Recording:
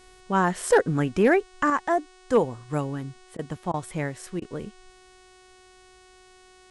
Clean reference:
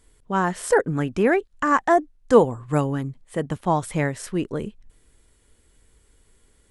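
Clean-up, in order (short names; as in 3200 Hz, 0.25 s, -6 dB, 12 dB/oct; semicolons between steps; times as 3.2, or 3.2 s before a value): clip repair -10 dBFS; de-hum 369.8 Hz, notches 26; interpolate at 3.37/3.72/4.4, 17 ms; gain 0 dB, from 1.7 s +6 dB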